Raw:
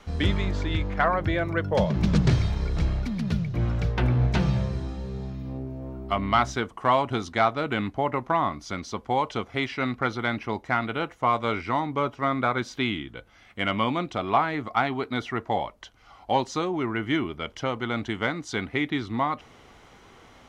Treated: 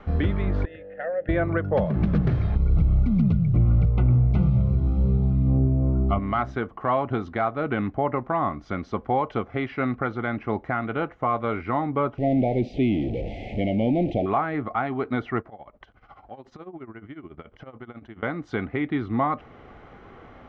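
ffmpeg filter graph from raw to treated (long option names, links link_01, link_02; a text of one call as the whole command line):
ffmpeg -i in.wav -filter_complex "[0:a]asettb=1/sr,asplit=3[link_01][link_02][link_03];[link_01]atrim=end=0.654[link_04];[link_02]atrim=start=0.65:end=1.29,asetpts=PTS-STARTPTS,afade=type=in:duration=0.004:curve=qsin,afade=type=out:start_time=0.636:duration=0.004:curve=qsin,asplit=3[link_05][link_06][link_07];[link_05]bandpass=frequency=530:width_type=q:width=8,volume=0dB[link_08];[link_06]bandpass=frequency=1840:width_type=q:width=8,volume=-6dB[link_09];[link_07]bandpass=frequency=2480:width_type=q:width=8,volume=-9dB[link_10];[link_08][link_09][link_10]amix=inputs=3:normalize=0,equalizer=frequency=370:width=2.2:gain=-6.5,bandreject=frequency=2300:width=7.9[link_11];[link_03]atrim=start=1.286[link_12];[link_04][link_11]acrossfade=duration=0.004:curve1=hsin:curve2=qsin[link_13];[link_13][link_12]acrossfade=duration=0.004:curve1=qsin:curve2=hsin,asettb=1/sr,asplit=3[link_14][link_15][link_16];[link_14]atrim=end=2.554[link_17];[link_15]atrim=start=2.55:end=6.19,asetpts=PTS-STARTPTS,afade=type=in:duration=0.004:curve=qsin,afade=type=out:start_time=3.636:duration=0.004:curve=qsin,asuperstop=centerf=1700:order=20:qfactor=3.5,bass=frequency=250:gain=11,treble=frequency=4000:gain=4[link_18];[link_16]atrim=start=6.186[link_19];[link_17][link_18]acrossfade=duration=0.004:curve1=hsin:curve2=qsin[link_20];[link_20][link_19]acrossfade=duration=0.004:curve1=qsin:curve2=hsin,asettb=1/sr,asplit=3[link_21][link_22][link_23];[link_21]atrim=end=12.184[link_24];[link_22]atrim=start=12.18:end=14.26,asetpts=PTS-STARTPTS,afade=type=in:duration=0.004:curve=qsin,afade=type=out:start_time=2.076:duration=0.004:curve=qsin,aeval=exprs='val(0)+0.5*0.0376*sgn(val(0))':channel_layout=same,asuperstop=centerf=1300:order=8:qfactor=0.85,aemphasis=mode=reproduction:type=75kf[link_25];[link_23]atrim=start=14.256[link_26];[link_24][link_25]acrossfade=duration=0.004:curve1=hsin:curve2=qsin[link_27];[link_27][link_26]acrossfade=duration=0.004:curve1=qsin:curve2=hsin,asettb=1/sr,asplit=3[link_28][link_29][link_30];[link_28]atrim=end=15.404[link_31];[link_29]atrim=start=15.4:end=18.23,asetpts=PTS-STARTPTS,afade=type=in:duration=0.004:curve=qsin,afade=type=out:start_time=2.826:duration=0.004:curve=qsin,acompressor=threshold=-40dB:ratio=8:attack=3.2:release=140:knee=1:detection=peak,tremolo=f=14:d=0.82[link_32];[link_30]atrim=start=18.226[link_33];[link_31][link_32]acrossfade=duration=0.004:curve1=hsin:curve2=qsin[link_34];[link_34][link_33]acrossfade=duration=0.004:curve1=qsin:curve2=hsin,bandreject=frequency=950:width=7.8,alimiter=limit=-18.5dB:level=0:latency=1:release=496,lowpass=1600,volume=6.5dB" out.wav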